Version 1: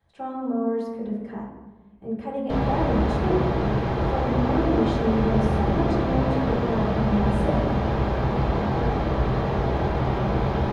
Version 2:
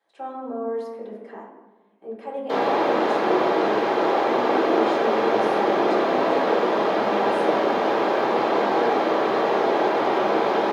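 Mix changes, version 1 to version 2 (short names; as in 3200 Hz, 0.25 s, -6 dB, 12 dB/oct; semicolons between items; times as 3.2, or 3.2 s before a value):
background +7.0 dB; master: add HPF 310 Hz 24 dB/oct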